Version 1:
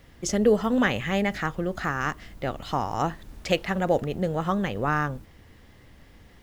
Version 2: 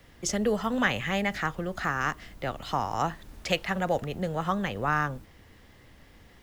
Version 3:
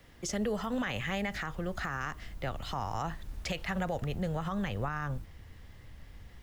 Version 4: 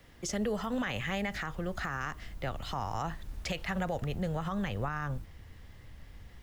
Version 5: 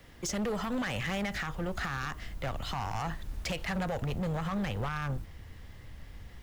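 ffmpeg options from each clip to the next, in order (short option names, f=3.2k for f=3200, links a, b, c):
-filter_complex "[0:a]lowshelf=f=330:g=-3.5,acrossover=split=250|530|2300[a][b][c][d];[b]acompressor=threshold=-41dB:ratio=6[e];[a][e][c][d]amix=inputs=4:normalize=0"
-af "asubboost=boost=3:cutoff=150,alimiter=limit=-21.5dB:level=0:latency=1:release=61,volume=-2.5dB"
-af anull
-af "asoftclip=type=hard:threshold=-32dB,volume=3dB"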